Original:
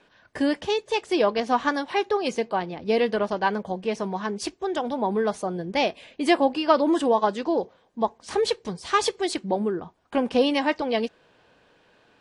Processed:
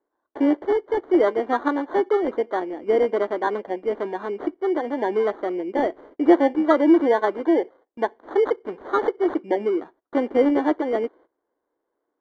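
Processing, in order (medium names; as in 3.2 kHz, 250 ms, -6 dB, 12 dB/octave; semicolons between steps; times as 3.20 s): sample-and-hold 17×; low-pass 1.5 kHz 12 dB/octave; resonant low shelf 220 Hz -12.5 dB, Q 3; gate -47 dBFS, range -20 dB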